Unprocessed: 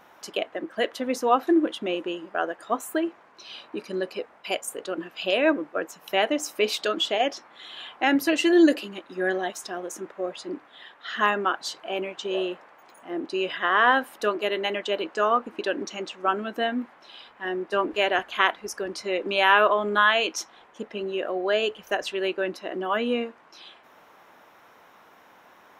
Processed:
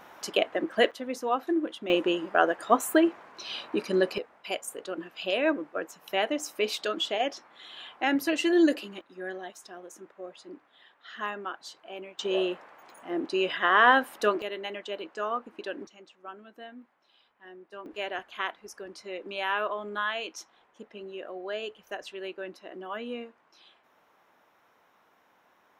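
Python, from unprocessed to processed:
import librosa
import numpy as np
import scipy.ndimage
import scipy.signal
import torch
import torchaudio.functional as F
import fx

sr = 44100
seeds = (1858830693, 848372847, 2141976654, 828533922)

y = fx.gain(x, sr, db=fx.steps((0.0, 3.0), (0.91, -7.0), (1.9, 4.5), (4.18, -4.5), (9.01, -11.5), (12.19, 0.0), (14.42, -9.0), (15.87, -19.0), (17.86, -11.0)))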